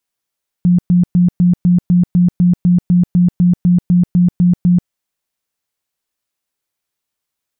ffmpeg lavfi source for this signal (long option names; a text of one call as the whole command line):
ffmpeg -f lavfi -i "aevalsrc='0.447*sin(2*PI*177*mod(t,0.25))*lt(mod(t,0.25),24/177)':duration=4.25:sample_rate=44100" out.wav